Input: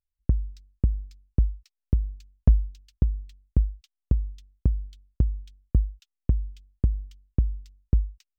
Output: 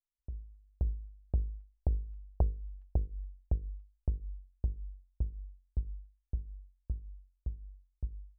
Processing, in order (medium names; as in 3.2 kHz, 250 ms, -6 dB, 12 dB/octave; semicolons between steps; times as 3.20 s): Doppler pass-by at 2.50 s, 12 m/s, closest 6.8 m; compression 10:1, threshold -29 dBFS, peak gain reduction 17.5 dB; graphic EQ 125/250/500 Hz -9/-11/-5 dB; level rider gain up to 12 dB; Chebyshev low-pass 750 Hz, order 3; hum notches 50/100/150/200/250/300/350/400/450/500 Hz; trim -3 dB